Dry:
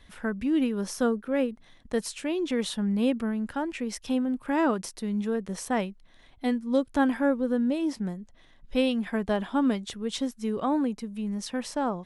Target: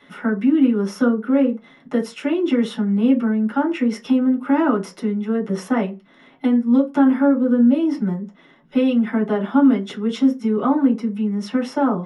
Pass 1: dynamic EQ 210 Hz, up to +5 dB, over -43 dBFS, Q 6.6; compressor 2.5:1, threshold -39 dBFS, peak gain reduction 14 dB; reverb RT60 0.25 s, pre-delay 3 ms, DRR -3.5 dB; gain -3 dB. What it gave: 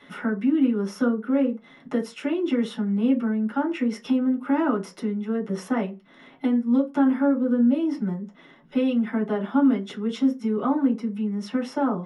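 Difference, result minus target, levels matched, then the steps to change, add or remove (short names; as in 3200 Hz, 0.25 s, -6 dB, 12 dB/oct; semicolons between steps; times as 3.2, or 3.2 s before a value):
compressor: peak gain reduction +5 dB
change: compressor 2.5:1, threshold -30.5 dBFS, peak gain reduction 9 dB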